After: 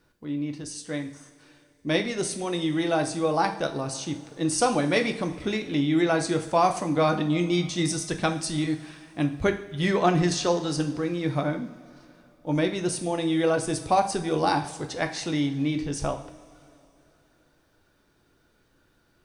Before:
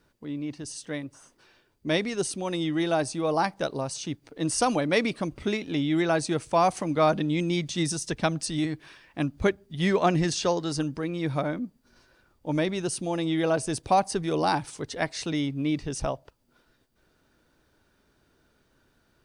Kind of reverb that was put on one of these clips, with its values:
coupled-rooms reverb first 0.5 s, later 3.1 s, from −18 dB, DRR 5 dB

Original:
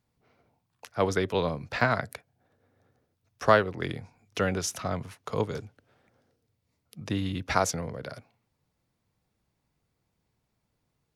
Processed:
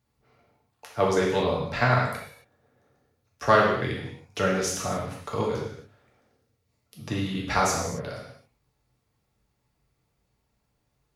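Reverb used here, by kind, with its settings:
reverb whose tail is shaped and stops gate 300 ms falling, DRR −3.5 dB
level −1.5 dB

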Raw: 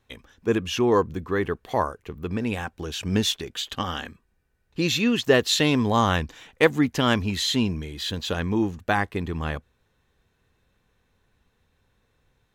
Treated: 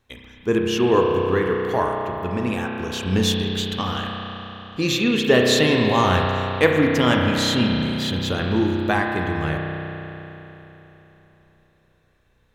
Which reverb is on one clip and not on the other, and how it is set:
spring reverb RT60 3.6 s, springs 32 ms, chirp 40 ms, DRR 0 dB
level +1 dB

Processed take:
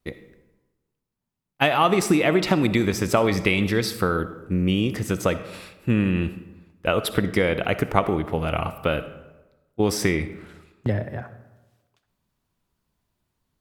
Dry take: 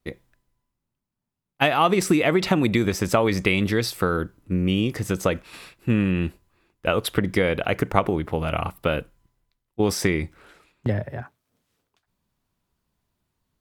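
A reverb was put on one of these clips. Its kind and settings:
comb and all-pass reverb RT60 1.1 s, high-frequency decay 0.55×, pre-delay 20 ms, DRR 12 dB

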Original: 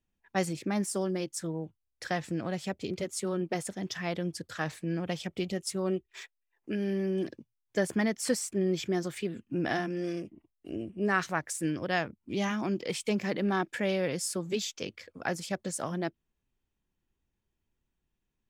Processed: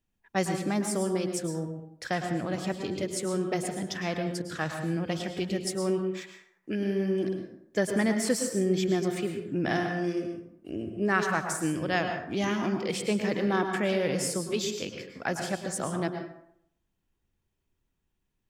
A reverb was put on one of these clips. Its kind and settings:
dense smooth reverb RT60 0.7 s, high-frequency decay 0.55×, pre-delay 95 ms, DRR 5 dB
level +1.5 dB

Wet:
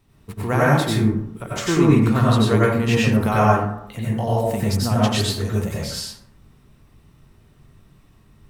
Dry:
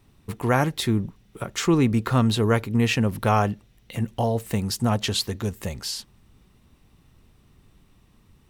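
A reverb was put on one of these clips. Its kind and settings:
dense smooth reverb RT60 0.72 s, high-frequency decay 0.45×, pre-delay 80 ms, DRR −6.5 dB
level −3 dB

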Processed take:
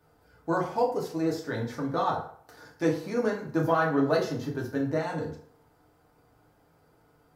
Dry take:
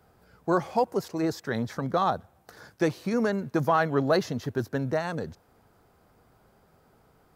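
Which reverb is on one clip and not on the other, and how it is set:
feedback delay network reverb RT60 0.55 s, low-frequency decay 0.8×, high-frequency decay 0.7×, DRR −3 dB
level −6.5 dB

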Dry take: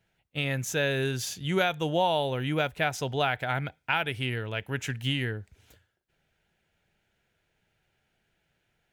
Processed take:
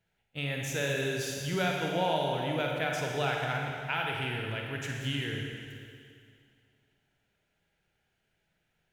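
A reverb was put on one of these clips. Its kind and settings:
four-comb reverb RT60 2.3 s, DRR −0.5 dB
level −6 dB

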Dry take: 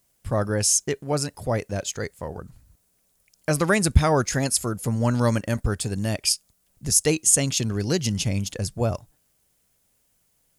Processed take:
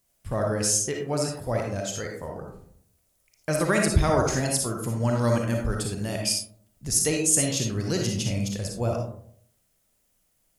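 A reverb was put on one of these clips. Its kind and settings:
comb and all-pass reverb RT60 0.63 s, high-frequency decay 0.35×, pre-delay 15 ms, DRR 0.5 dB
level −4.5 dB

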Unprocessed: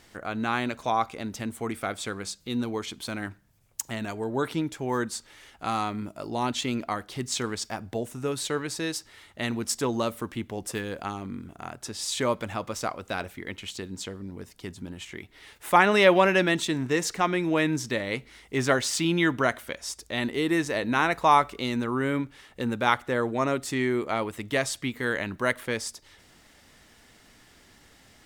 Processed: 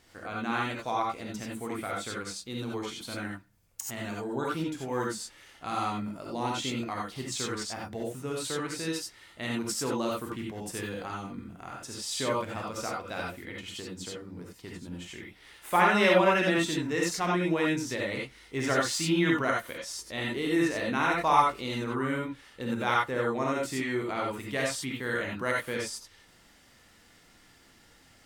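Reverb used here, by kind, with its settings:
reverb whose tail is shaped and stops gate 110 ms rising, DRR −2.5 dB
level −7 dB

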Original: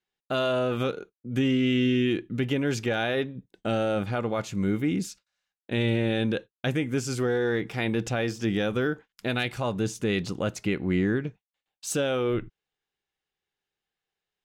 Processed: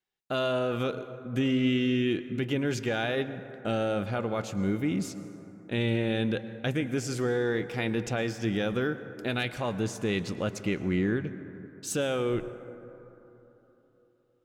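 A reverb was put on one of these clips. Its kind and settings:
dense smooth reverb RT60 3.6 s, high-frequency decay 0.3×, pre-delay 95 ms, DRR 12.5 dB
level −2.5 dB

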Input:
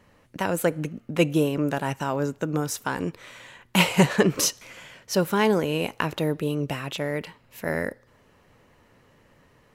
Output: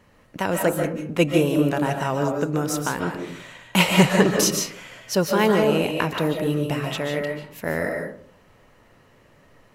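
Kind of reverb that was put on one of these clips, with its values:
comb and all-pass reverb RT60 0.54 s, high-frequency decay 0.4×, pre-delay 105 ms, DRR 2.5 dB
level +1.5 dB

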